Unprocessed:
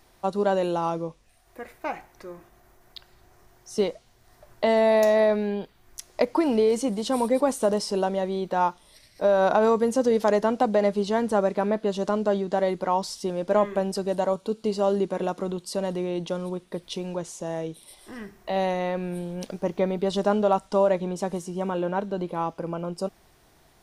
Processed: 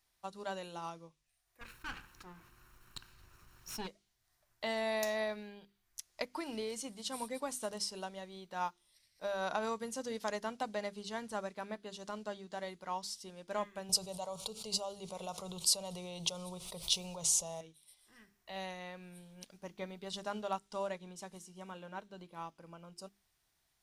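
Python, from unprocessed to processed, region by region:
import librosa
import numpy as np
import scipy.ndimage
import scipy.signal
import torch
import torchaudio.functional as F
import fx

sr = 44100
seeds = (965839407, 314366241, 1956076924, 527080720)

y = fx.chain(x, sr, fx.lower_of_two(delay_ms=0.72),
    fx.high_shelf(hz=2700.0, db=-9.5),
    fx.env_flatten(amount_pct=50), at=(1.61, 3.87))
y = fx.chain(y, sr, fx.fixed_phaser(hz=700.0, stages=4),
    fx.env_flatten(amount_pct=70), at=(13.89, 17.61))
y = fx.tone_stack(y, sr, knobs='5-5-5')
y = fx.hum_notches(y, sr, base_hz=50, count=8)
y = fx.upward_expand(y, sr, threshold_db=-57.0, expansion=1.5)
y = y * librosa.db_to_amplitude(5.0)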